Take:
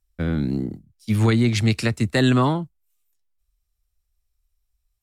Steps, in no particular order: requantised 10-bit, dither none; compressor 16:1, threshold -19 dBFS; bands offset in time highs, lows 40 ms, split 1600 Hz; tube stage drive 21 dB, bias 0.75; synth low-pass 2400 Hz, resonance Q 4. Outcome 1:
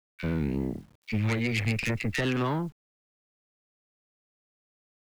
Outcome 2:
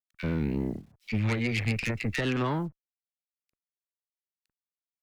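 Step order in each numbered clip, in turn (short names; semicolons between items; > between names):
compressor > synth low-pass > tube stage > bands offset in time > requantised; synth low-pass > requantised > compressor > tube stage > bands offset in time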